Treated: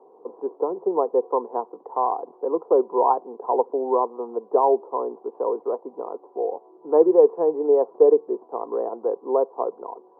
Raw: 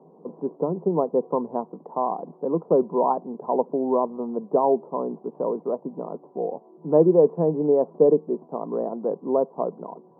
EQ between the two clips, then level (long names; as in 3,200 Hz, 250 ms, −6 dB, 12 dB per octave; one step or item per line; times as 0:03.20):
high-pass filter 400 Hz 24 dB per octave
high-frequency loss of the air 250 metres
parametric band 610 Hz −10 dB 0.24 octaves
+5.5 dB